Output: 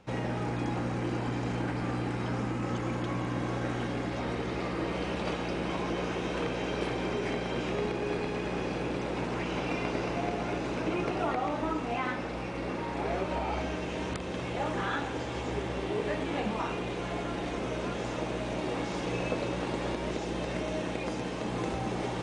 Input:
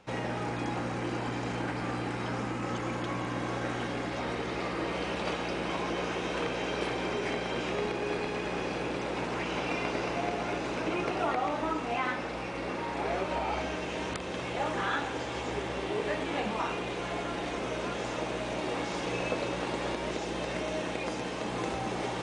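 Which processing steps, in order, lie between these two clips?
low-shelf EQ 340 Hz +7.5 dB
level −2.5 dB

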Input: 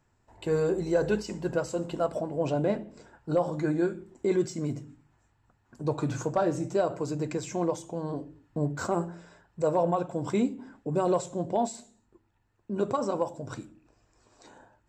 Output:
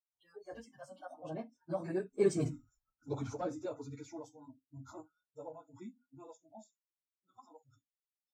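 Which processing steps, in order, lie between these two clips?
source passing by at 0:04.54, 27 m/s, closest 8.1 metres
time stretch by phase vocoder 0.56×
noise reduction from a noise print of the clip's start 29 dB
level +6.5 dB

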